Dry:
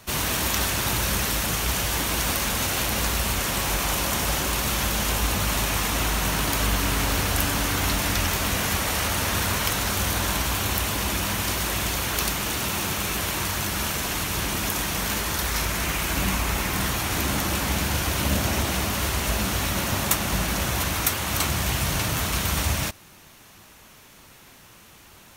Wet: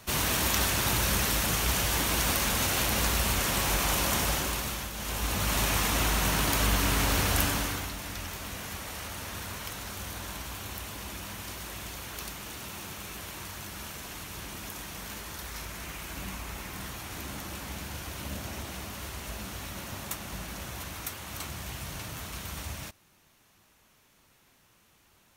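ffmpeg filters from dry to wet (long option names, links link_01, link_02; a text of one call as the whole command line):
ffmpeg -i in.wav -af "volume=9dB,afade=type=out:start_time=4.17:duration=0.75:silence=0.266073,afade=type=in:start_time=4.92:duration=0.72:silence=0.266073,afade=type=out:start_time=7.4:duration=0.5:silence=0.266073" out.wav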